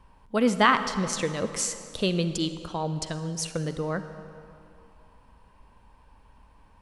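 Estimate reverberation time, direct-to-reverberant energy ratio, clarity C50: 2.7 s, 10.0 dB, 10.5 dB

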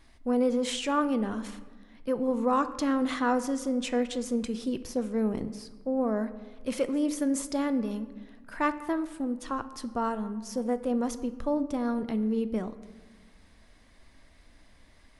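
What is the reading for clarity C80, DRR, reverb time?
15.5 dB, 11.5 dB, 1.4 s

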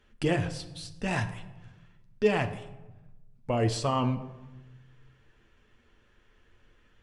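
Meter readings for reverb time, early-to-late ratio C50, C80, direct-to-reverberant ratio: 1.1 s, 12.5 dB, 14.5 dB, 5.5 dB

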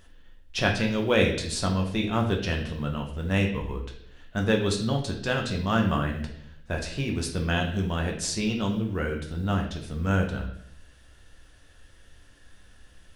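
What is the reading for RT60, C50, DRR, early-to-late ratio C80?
0.70 s, 6.5 dB, 1.0 dB, 10.0 dB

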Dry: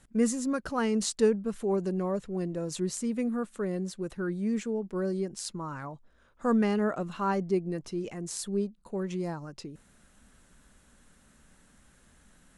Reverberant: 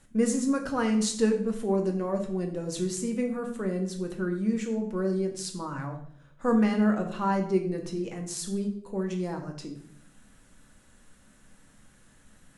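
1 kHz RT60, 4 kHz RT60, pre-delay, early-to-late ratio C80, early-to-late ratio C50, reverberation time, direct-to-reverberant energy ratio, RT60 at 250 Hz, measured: 0.55 s, 0.50 s, 3 ms, 12.0 dB, 9.0 dB, 0.65 s, 2.5 dB, 0.90 s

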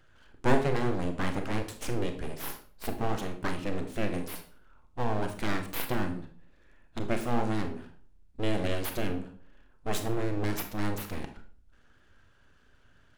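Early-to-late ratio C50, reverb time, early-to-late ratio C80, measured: 9.5 dB, 0.45 s, 14.0 dB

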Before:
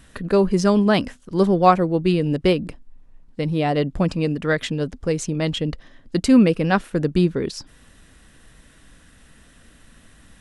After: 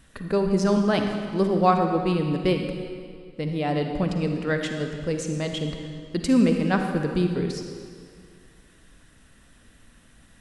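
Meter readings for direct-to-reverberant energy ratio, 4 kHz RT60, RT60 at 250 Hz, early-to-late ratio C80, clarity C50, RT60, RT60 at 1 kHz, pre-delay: 4.0 dB, 1.7 s, 2.1 s, 5.5 dB, 4.5 dB, 2.1 s, 2.0 s, 40 ms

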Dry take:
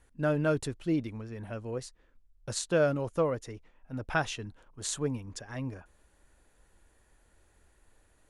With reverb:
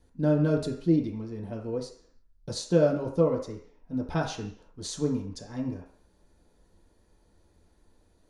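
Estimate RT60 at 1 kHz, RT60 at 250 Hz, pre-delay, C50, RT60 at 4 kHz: 0.55 s, 0.50 s, 3 ms, 7.5 dB, 0.60 s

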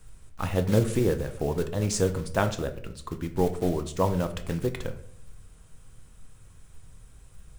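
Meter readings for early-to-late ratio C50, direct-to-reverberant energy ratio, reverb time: 13.0 dB, 7.0 dB, 0.65 s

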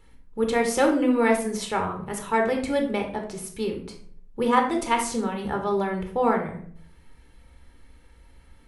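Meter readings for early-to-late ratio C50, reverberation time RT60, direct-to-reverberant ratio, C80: 7.5 dB, 0.60 s, 2.5 dB, 11.5 dB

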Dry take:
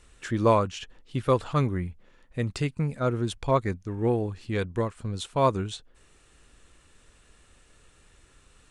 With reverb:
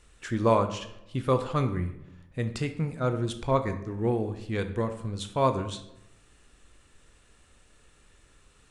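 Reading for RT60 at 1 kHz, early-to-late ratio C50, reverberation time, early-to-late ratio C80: 0.80 s, 10.5 dB, 0.85 s, 13.5 dB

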